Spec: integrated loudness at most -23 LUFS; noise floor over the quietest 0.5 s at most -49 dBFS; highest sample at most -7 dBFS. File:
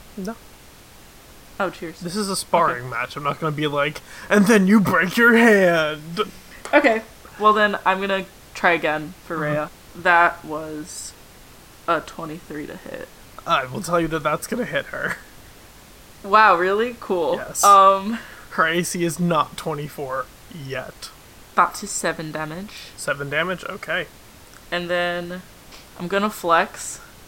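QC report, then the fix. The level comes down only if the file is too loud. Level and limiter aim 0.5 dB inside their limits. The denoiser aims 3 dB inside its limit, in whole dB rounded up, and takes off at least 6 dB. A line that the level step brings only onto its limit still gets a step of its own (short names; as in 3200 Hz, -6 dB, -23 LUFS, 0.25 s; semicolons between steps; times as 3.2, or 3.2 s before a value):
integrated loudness -20.0 LUFS: fail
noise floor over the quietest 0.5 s -45 dBFS: fail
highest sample -2.5 dBFS: fail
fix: denoiser 6 dB, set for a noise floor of -45 dBFS; gain -3.5 dB; limiter -7.5 dBFS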